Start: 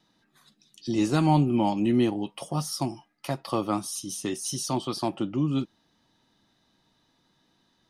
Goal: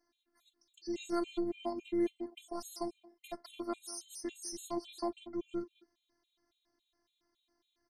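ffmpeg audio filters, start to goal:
-filter_complex "[0:a]afftfilt=real='hypot(re,im)*cos(PI*b)':imag='0':win_size=512:overlap=0.75,asplit=2[a][b];[b]adelay=200,highpass=300,lowpass=3.4k,asoftclip=type=hard:threshold=-22dB,volume=-17dB[c];[a][c]amix=inputs=2:normalize=0,afftfilt=real='re*gt(sin(2*PI*3.6*pts/sr)*(1-2*mod(floor(b*sr/1024/2100),2)),0)':imag='im*gt(sin(2*PI*3.6*pts/sr)*(1-2*mod(floor(b*sr/1024/2100),2)),0)':win_size=1024:overlap=0.75,volume=-5.5dB"

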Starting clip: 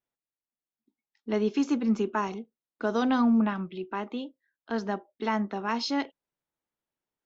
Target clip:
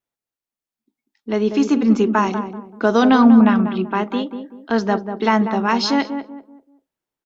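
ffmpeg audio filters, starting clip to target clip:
-filter_complex "[0:a]dynaudnorm=f=340:g=9:m=9.5dB,asplit=2[a][b];[b]adelay=192,lowpass=f=940:p=1,volume=-7dB,asplit=2[c][d];[d]adelay=192,lowpass=f=940:p=1,volume=0.35,asplit=2[e][f];[f]adelay=192,lowpass=f=940:p=1,volume=0.35,asplit=2[g][h];[h]adelay=192,lowpass=f=940:p=1,volume=0.35[i];[a][c][e][g][i]amix=inputs=5:normalize=0,volume=2.5dB"

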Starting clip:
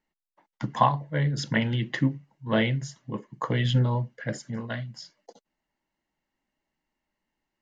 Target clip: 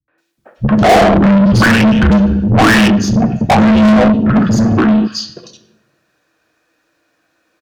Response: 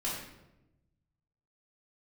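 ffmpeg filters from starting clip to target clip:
-filter_complex "[0:a]asplit=2[a][b];[b]asoftclip=type=tanh:threshold=-15dB,volume=-4dB[c];[a][c]amix=inputs=2:normalize=0,afreqshift=-340,asplit=2[d][e];[1:a]atrim=start_sample=2205,asetrate=48510,aresample=44100[f];[e][f]afir=irnorm=-1:irlink=0,volume=-9dB[g];[d][g]amix=inputs=2:normalize=0,afwtdn=0.0708,acrossover=split=160|2500[h][i][j];[i]adelay=80[k];[j]adelay=180[l];[h][k][l]amix=inputs=3:normalize=0,asplit=2[m][n];[n]highpass=f=720:p=1,volume=41dB,asoftclip=type=tanh:threshold=-2.5dB[o];[m][o]amix=inputs=2:normalize=0,lowpass=f=5.3k:p=1,volume=-6dB,adynamicequalizer=threshold=0.0447:dfrequency=2000:dqfactor=0.7:tfrequency=2000:tqfactor=0.7:attack=5:release=100:ratio=0.375:range=2:mode=cutabove:tftype=highshelf,volume=1.5dB"

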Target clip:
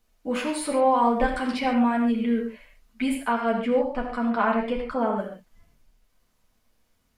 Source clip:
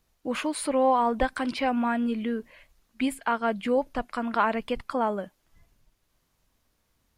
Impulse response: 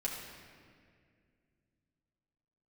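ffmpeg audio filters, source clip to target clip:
-filter_complex "[0:a]asettb=1/sr,asplit=3[a][b][c];[a]atrim=end=3.524[d];[b]atrim=start=3.52:end=5.18,asetpts=PTS-STARTPTS,afade=t=in:d=0.004:c=qsin,afade=t=out:st=1.656:d=0.004:c=qsin,highshelf=f=4.8k:g=-10[e];[c]atrim=start=5.176[f];[d][e]acrossfade=d=0.004:c1=hsin:c2=qsin[g];[g][f]acrossfade=d=0.004:c1=qsin:c2=hsin[h];[1:a]atrim=start_sample=2205,afade=t=out:st=0.2:d=0.01,atrim=end_sample=9261[i];[h][i]afir=irnorm=-1:irlink=0"

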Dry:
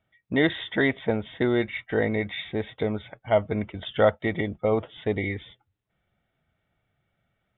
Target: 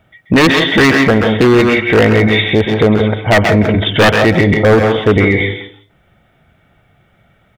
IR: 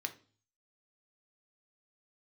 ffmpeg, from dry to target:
-filter_complex "[0:a]highshelf=f=2.3k:g=-4,asplit=2[a][b];[b]adelay=170,highpass=300,lowpass=3.4k,asoftclip=type=hard:threshold=-17.5dB,volume=-11dB[c];[a][c]amix=inputs=2:normalize=0,aeval=exprs='0.112*(abs(mod(val(0)/0.112+3,4)-2)-1)':c=same,acontrast=35,asplit=2[d][e];[1:a]atrim=start_sample=2205,adelay=132[f];[e][f]afir=irnorm=-1:irlink=0,volume=-6.5dB[g];[d][g]amix=inputs=2:normalize=0,alimiter=level_in=17.5dB:limit=-1dB:release=50:level=0:latency=1,volume=-1dB"

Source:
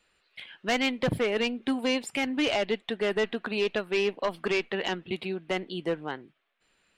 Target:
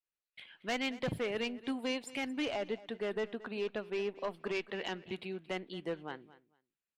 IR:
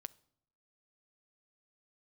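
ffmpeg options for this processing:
-filter_complex "[0:a]agate=range=-33dB:threshold=-55dB:ratio=3:detection=peak,aecho=1:1:226|452:0.119|0.0226,asplit=3[a][b][c];[a]afade=t=out:st=2.44:d=0.02[d];[b]adynamicequalizer=threshold=0.00708:dfrequency=1700:dqfactor=0.7:tfrequency=1700:tqfactor=0.7:attack=5:release=100:ratio=0.375:range=3.5:mode=cutabove:tftype=highshelf,afade=t=in:st=2.44:d=0.02,afade=t=out:st=4.54:d=0.02[e];[c]afade=t=in:st=4.54:d=0.02[f];[d][e][f]amix=inputs=3:normalize=0,volume=-8.5dB"

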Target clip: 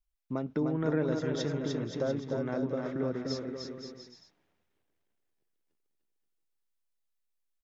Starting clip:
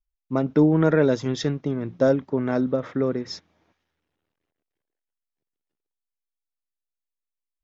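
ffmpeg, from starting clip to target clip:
-filter_complex "[0:a]acompressor=threshold=-39dB:ratio=2,asplit=2[a][b];[b]aecho=0:1:300|525|693.8|820.3|915.2:0.631|0.398|0.251|0.158|0.1[c];[a][c]amix=inputs=2:normalize=0"

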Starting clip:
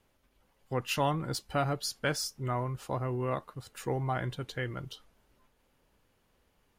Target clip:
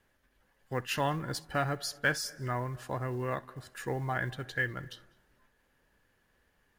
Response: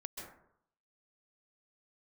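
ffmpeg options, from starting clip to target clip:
-filter_complex "[0:a]equalizer=f=1.7k:w=4.7:g=13,acrusher=bits=8:mode=log:mix=0:aa=0.000001,asplit=2[a][b];[1:a]atrim=start_sample=2205,adelay=65[c];[b][c]afir=irnorm=-1:irlink=0,volume=-18dB[d];[a][d]amix=inputs=2:normalize=0,volume=-2dB"

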